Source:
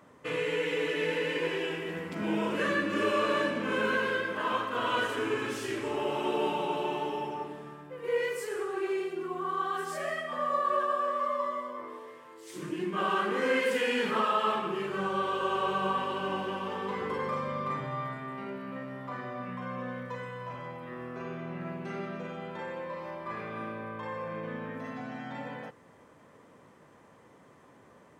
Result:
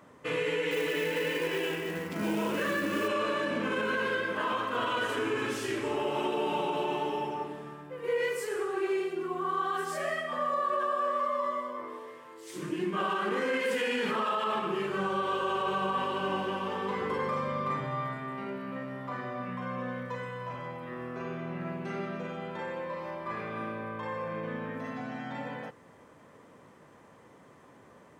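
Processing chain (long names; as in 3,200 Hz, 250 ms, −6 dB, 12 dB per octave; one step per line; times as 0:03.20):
brickwall limiter −23 dBFS, peak gain reduction 7 dB
0:00.71–0:03.08: floating-point word with a short mantissa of 2 bits
level +1.5 dB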